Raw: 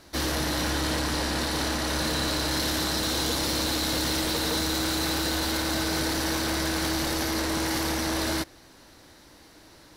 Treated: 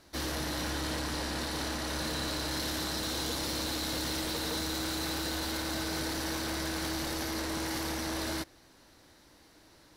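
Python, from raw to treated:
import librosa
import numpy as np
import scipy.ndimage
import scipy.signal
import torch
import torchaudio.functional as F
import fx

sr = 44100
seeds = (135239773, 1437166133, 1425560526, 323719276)

y = x * librosa.db_to_amplitude(-7.0)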